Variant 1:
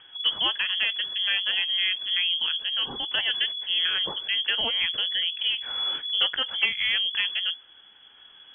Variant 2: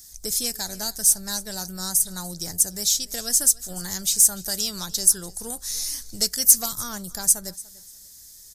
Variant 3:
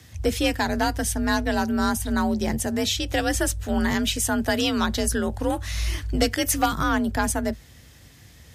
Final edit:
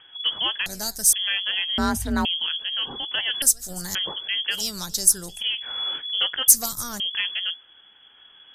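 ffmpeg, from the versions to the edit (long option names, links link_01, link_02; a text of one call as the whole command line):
ffmpeg -i take0.wav -i take1.wav -i take2.wav -filter_complex "[1:a]asplit=4[link_01][link_02][link_03][link_04];[0:a]asplit=6[link_05][link_06][link_07][link_08][link_09][link_10];[link_05]atrim=end=0.662[link_11];[link_01]atrim=start=0.658:end=1.132[link_12];[link_06]atrim=start=1.128:end=1.782[link_13];[2:a]atrim=start=1.778:end=2.252[link_14];[link_07]atrim=start=2.248:end=3.422[link_15];[link_02]atrim=start=3.418:end=3.952[link_16];[link_08]atrim=start=3.948:end=4.66[link_17];[link_03]atrim=start=4.5:end=5.44[link_18];[link_09]atrim=start=5.28:end=6.482[link_19];[link_04]atrim=start=6.478:end=7.002[link_20];[link_10]atrim=start=6.998[link_21];[link_11][link_12]acrossfade=duration=0.004:curve1=hsin:curve2=hsin[link_22];[link_22][link_13]acrossfade=duration=0.004:curve1=hsin:curve2=hsin[link_23];[link_23][link_14]acrossfade=duration=0.004:curve1=hsin:curve2=hsin[link_24];[link_24][link_15]acrossfade=duration=0.004:curve1=hsin:curve2=hsin[link_25];[link_25][link_16]acrossfade=duration=0.004:curve1=hsin:curve2=hsin[link_26];[link_26][link_17]acrossfade=duration=0.004:curve1=hsin:curve2=hsin[link_27];[link_27][link_18]acrossfade=duration=0.16:curve1=tri:curve2=tri[link_28];[link_28][link_19]acrossfade=duration=0.16:curve1=tri:curve2=tri[link_29];[link_29][link_20]acrossfade=duration=0.004:curve1=hsin:curve2=hsin[link_30];[link_30][link_21]acrossfade=duration=0.004:curve1=hsin:curve2=hsin" out.wav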